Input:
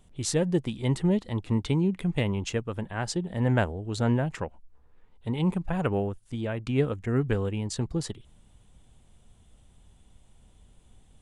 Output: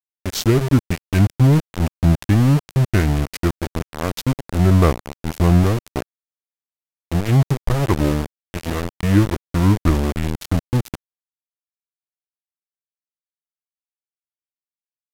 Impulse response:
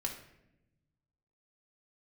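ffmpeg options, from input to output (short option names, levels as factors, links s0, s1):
-af "aeval=exprs='val(0)*gte(abs(val(0)),0.0447)':c=same,asetrate=32667,aresample=44100,lowshelf=f=200:g=6,volume=2.24"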